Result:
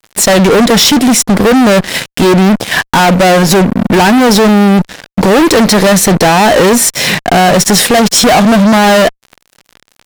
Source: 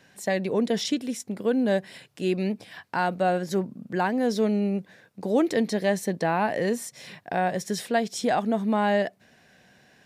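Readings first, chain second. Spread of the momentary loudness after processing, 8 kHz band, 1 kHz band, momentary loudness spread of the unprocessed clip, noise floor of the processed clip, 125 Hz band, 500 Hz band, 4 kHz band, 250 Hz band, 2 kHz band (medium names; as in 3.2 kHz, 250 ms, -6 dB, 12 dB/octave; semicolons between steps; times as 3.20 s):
5 LU, +27.5 dB, +18.5 dB, 8 LU, -60 dBFS, +21.0 dB, +17.0 dB, +25.5 dB, +18.5 dB, +20.0 dB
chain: in parallel at +0.5 dB: compression 8:1, threshold -33 dBFS, peak gain reduction 15 dB; on the sum: fuzz box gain 35 dB, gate -43 dBFS; trim +8.5 dB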